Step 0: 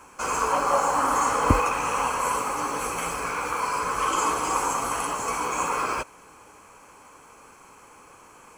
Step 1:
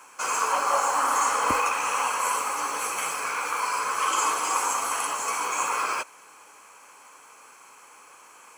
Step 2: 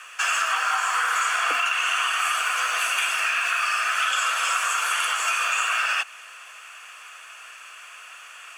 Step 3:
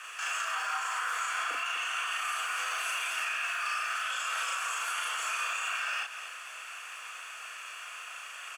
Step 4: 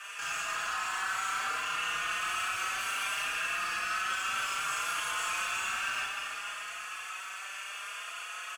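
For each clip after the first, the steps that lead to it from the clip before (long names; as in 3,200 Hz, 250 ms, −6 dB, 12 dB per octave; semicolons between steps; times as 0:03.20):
high-pass filter 1,200 Hz 6 dB per octave; level +3 dB
parametric band 2,500 Hz +13.5 dB 1.9 octaves; downward compressor, threshold −20 dBFS, peak gain reduction 7.5 dB; frequency shifter +210 Hz
downward compressor, threshold −25 dBFS, peak gain reduction 6.5 dB; brickwall limiter −24 dBFS, peak gain reduction 8.5 dB; on a send: loudspeakers that aren't time-aligned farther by 12 metres −1 dB, 86 metres −10 dB; on the sum: level −3 dB
soft clipping −30.5 dBFS, distortion −14 dB; dense smooth reverb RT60 4.2 s, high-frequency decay 0.85×, pre-delay 0 ms, DRR 0.5 dB; barber-pole flanger 4.6 ms +0.65 Hz; level +3 dB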